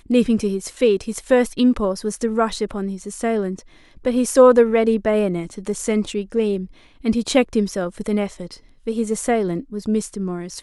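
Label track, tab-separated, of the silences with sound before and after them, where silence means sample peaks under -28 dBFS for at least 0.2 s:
3.590000	4.050000	silence
6.650000	7.050000	silence
8.530000	8.870000	silence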